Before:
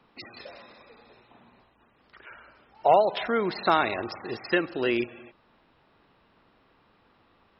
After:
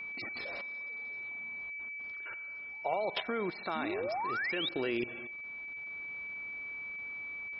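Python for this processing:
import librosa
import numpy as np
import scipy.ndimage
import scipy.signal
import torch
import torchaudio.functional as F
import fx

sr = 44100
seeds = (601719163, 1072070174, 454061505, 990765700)

y = fx.spec_paint(x, sr, seeds[0], shape='rise', start_s=3.75, length_s=0.94, low_hz=210.0, high_hz=3900.0, level_db=-27.0)
y = fx.level_steps(y, sr, step_db=16)
y = y + 10.0 ** (-42.0 / 20.0) * np.sin(2.0 * np.pi * 2300.0 * np.arange(len(y)) / sr)
y = fx.rider(y, sr, range_db=3, speed_s=2.0)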